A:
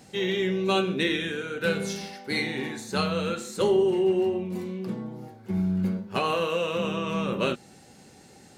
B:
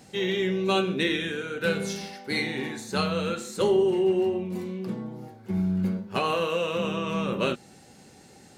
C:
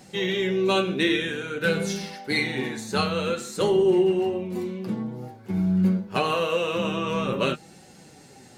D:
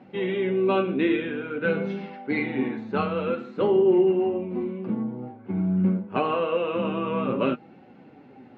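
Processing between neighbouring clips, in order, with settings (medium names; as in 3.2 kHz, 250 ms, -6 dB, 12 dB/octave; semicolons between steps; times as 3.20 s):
no audible change
flange 0.51 Hz, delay 5.3 ms, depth 4.1 ms, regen +50%; trim +6.5 dB
cabinet simulation 110–2400 Hz, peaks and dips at 160 Hz -5 dB, 260 Hz +8 dB, 1.8 kHz -7 dB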